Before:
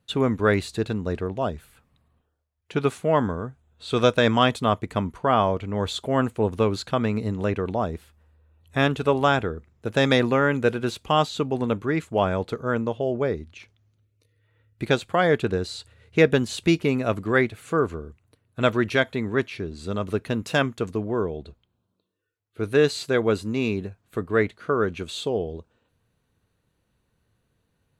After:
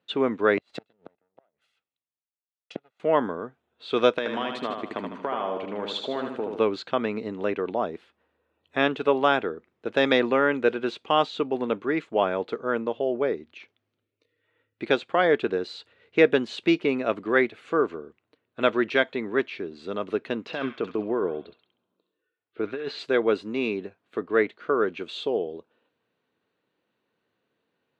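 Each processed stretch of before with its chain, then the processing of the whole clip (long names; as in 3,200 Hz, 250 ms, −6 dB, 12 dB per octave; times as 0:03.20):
0:00.57–0:03.00: lower of the sound and its delayed copy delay 1.5 ms + gate with flip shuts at −19 dBFS, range −37 dB + multiband upward and downward expander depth 100%
0:04.18–0:06.59: high-pass filter 120 Hz + downward compressor 12 to 1, threshold −22 dBFS + repeating echo 77 ms, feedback 48%, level −5 dB
0:20.46–0:22.99: compressor whose output falls as the input rises −25 dBFS + high-frequency loss of the air 150 metres + delay with a high-pass on its return 67 ms, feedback 35%, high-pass 1,500 Hz, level −5 dB
whole clip: Chebyshev band-pass filter 310–3,300 Hz, order 2; de-essing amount 50%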